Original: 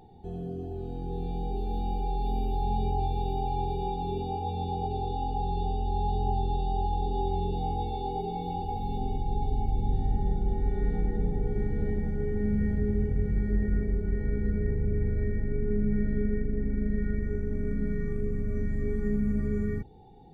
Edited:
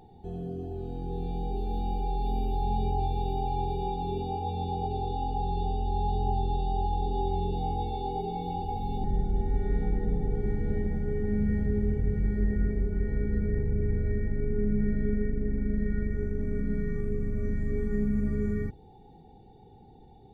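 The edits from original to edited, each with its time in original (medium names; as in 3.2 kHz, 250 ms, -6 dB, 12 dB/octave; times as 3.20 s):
9.04–10.16 s: delete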